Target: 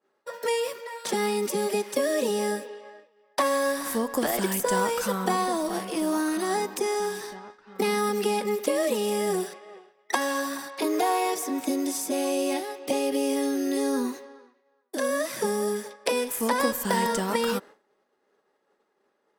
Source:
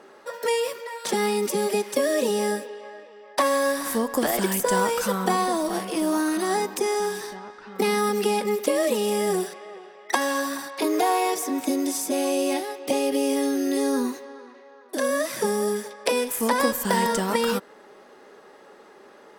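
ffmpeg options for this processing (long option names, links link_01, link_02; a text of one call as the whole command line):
ffmpeg -i in.wav -af "agate=range=-33dB:threshold=-36dB:ratio=3:detection=peak,volume=-2.5dB" out.wav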